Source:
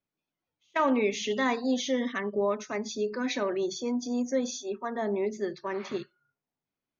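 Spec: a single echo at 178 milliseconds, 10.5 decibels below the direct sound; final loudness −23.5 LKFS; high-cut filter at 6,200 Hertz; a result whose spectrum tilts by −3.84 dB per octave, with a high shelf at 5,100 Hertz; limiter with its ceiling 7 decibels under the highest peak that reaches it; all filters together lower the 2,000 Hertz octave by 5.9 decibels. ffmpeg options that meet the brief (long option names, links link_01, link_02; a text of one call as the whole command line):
ffmpeg -i in.wav -af "lowpass=6200,equalizer=frequency=2000:width_type=o:gain=-6.5,highshelf=frequency=5100:gain=-4,alimiter=limit=-23.5dB:level=0:latency=1,aecho=1:1:178:0.299,volume=9dB" out.wav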